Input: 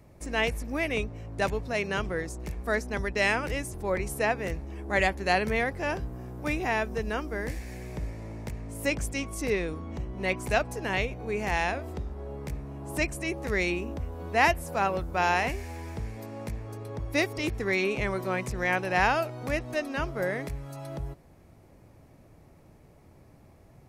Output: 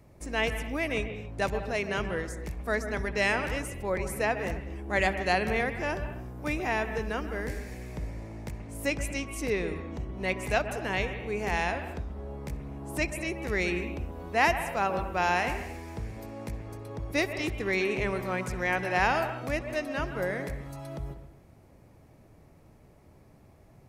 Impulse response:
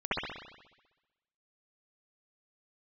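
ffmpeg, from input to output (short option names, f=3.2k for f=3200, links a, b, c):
-filter_complex "[0:a]asplit=2[a][b];[1:a]atrim=start_sample=2205,afade=t=out:st=0.28:d=0.01,atrim=end_sample=12789,adelay=64[c];[b][c]afir=irnorm=-1:irlink=0,volume=-19.5dB[d];[a][d]amix=inputs=2:normalize=0,volume=-1.5dB"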